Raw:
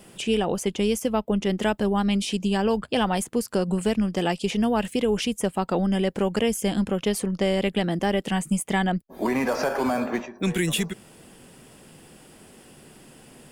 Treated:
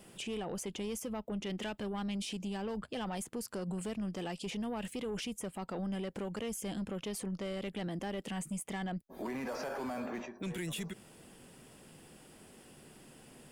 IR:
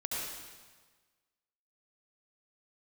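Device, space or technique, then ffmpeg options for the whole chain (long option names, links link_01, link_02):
soft clipper into limiter: -filter_complex "[0:a]asettb=1/sr,asplit=3[link_01][link_02][link_03];[link_01]atrim=end=1.434[link_04];[link_02]atrim=start=1.43:end=2.03,asetpts=PTS-STARTPTS,afade=type=in:duration=0.004:curve=qsin,afade=type=out:start_time=0.596:duration=0.004:curve=qsin,equalizer=frequency=2900:width=0.87:gain=6[link_05];[link_03]atrim=start=2.026[link_06];[link_04][link_05]acrossfade=duration=0.004:curve1=hsin:curve2=qsin[link_07];[link_07][link_06]acrossfade=duration=0.004:curve1=qsin:curve2=hsin,asoftclip=type=tanh:threshold=-17.5dB,alimiter=level_in=1.5dB:limit=-24dB:level=0:latency=1:release=51,volume=-1.5dB,volume=-7dB"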